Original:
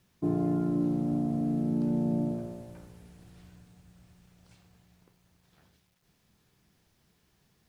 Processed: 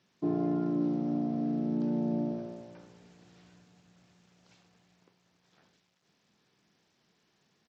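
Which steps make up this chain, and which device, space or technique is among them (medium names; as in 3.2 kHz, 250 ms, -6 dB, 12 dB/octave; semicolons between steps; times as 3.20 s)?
Bluetooth headset (high-pass 200 Hz 12 dB/octave; resampled via 16 kHz; SBC 64 kbps 32 kHz)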